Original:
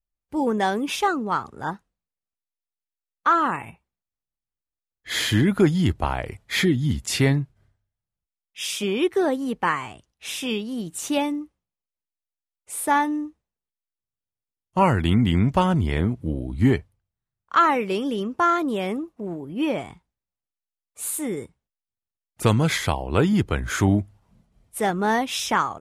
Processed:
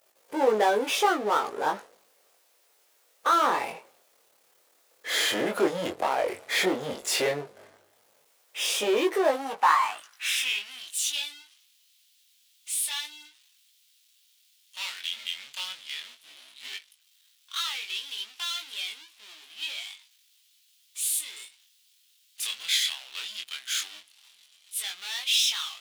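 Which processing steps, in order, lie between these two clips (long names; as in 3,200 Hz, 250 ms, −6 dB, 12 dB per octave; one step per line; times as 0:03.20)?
power curve on the samples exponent 0.5
chorus effect 0.11 Hz, delay 18.5 ms, depth 5.3 ms
high-pass filter sweep 490 Hz → 3,300 Hz, 0:09.08–0:10.98
level −7 dB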